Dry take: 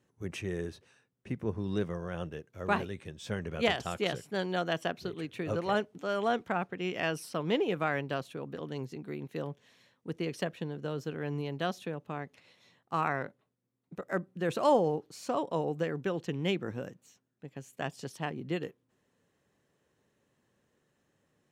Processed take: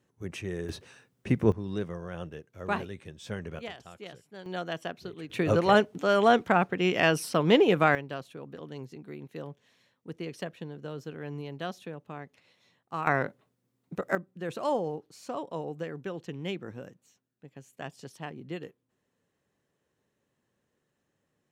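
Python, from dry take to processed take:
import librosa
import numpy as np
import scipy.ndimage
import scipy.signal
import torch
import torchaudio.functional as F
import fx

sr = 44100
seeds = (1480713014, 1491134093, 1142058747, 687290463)

y = fx.gain(x, sr, db=fx.steps((0.0, 0.5), (0.69, 10.5), (1.52, -1.0), (3.59, -12.5), (4.46, -3.0), (5.3, 8.5), (7.95, -3.0), (13.07, 7.0), (14.15, -4.0)))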